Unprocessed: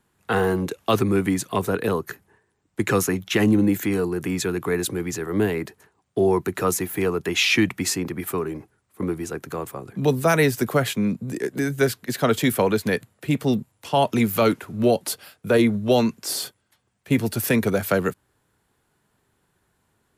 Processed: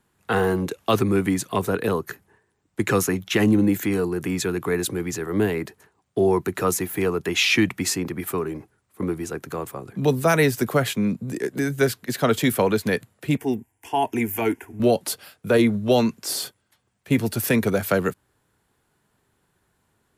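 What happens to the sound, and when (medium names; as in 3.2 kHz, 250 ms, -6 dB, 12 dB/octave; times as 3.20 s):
13.37–14.80 s: static phaser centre 830 Hz, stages 8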